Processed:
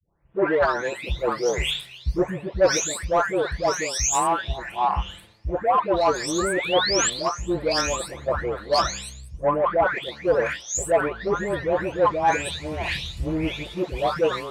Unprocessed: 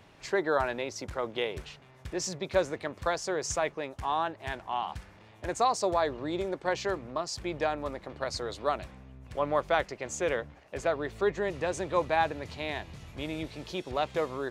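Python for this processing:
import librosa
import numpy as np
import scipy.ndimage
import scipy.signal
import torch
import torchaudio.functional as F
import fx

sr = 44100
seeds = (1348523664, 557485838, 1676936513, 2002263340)

p1 = fx.spec_delay(x, sr, highs='late', ms=714)
p2 = fx.rider(p1, sr, range_db=5, speed_s=0.5)
p3 = p1 + (p2 * 10.0 ** (3.0 / 20.0))
p4 = 10.0 ** (-17.5 / 20.0) * np.tanh(p3 / 10.0 ** (-17.5 / 20.0))
p5 = fx.spec_paint(p4, sr, seeds[0], shape='rise', start_s=6.38, length_s=0.72, low_hz=1100.0, high_hz=8000.0, level_db=-32.0)
p6 = fx.band_widen(p5, sr, depth_pct=100)
y = p6 * 10.0 ** (4.0 / 20.0)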